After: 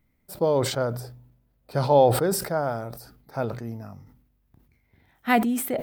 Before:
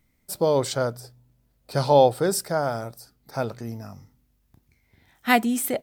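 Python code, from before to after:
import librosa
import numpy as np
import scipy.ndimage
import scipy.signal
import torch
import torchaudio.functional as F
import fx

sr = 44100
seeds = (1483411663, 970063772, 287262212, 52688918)

y = fx.peak_eq(x, sr, hz=7000.0, db=-10.5, octaves=2.1)
y = fx.sustainer(y, sr, db_per_s=73.0)
y = F.gain(torch.from_numpy(y), -1.0).numpy()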